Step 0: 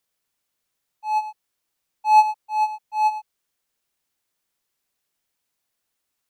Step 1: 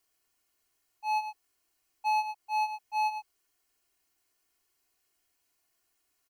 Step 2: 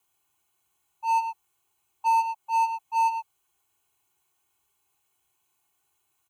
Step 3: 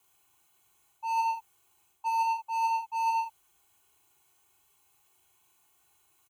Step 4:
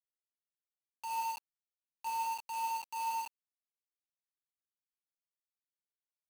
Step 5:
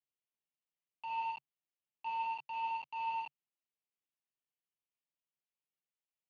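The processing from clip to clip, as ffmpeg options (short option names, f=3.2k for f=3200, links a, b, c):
-af "bandreject=f=3.6k:w=9.3,aecho=1:1:2.8:0.75,acompressor=threshold=-26dB:ratio=8"
-filter_complex "[0:a]superequalizer=7b=0.398:9b=2:11b=0.447:14b=0.355,afreqshift=51,asplit=2[a][b];[b]aeval=exprs='0.0224*(abs(mod(val(0)/0.0224+3,4)-2)-1)':c=same,volume=-8.5dB[c];[a][c]amix=inputs=2:normalize=0"
-af "areverse,acompressor=threshold=-30dB:ratio=12,areverse,aecho=1:1:39|75:0.562|0.299,volume=4.5dB"
-af "acrusher=bits=5:mix=0:aa=0.000001,volume=-8dB"
-af "highpass=f=120:w=0.5412,highpass=f=120:w=1.3066,equalizer=f=140:t=q:w=4:g=7,equalizer=f=1.5k:t=q:w=4:g=-9,equalizer=f=2.9k:t=q:w=4:g=6,lowpass=f=3.1k:w=0.5412,lowpass=f=3.1k:w=1.3066,volume=-1dB"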